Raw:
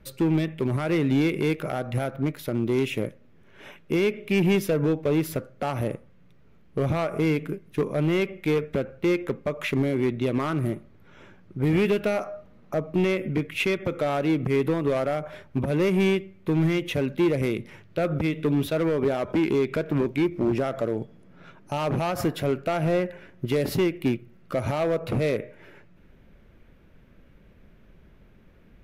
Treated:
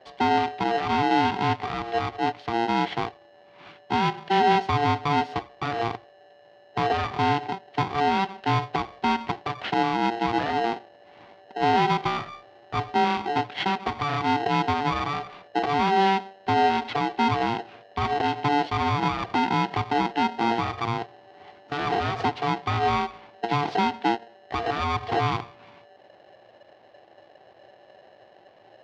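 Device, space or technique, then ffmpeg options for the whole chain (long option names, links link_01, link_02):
ring modulator pedal into a guitar cabinet: -af "aeval=exprs='val(0)*sgn(sin(2*PI*580*n/s))':channel_layout=same,highpass=96,equalizer=frequency=110:width_type=q:width=4:gain=10,equalizer=frequency=340:width_type=q:width=4:gain=5,equalizer=frequency=750:width_type=q:width=4:gain=8,lowpass=frequency=4400:width=0.5412,lowpass=frequency=4400:width=1.3066,volume=-2.5dB"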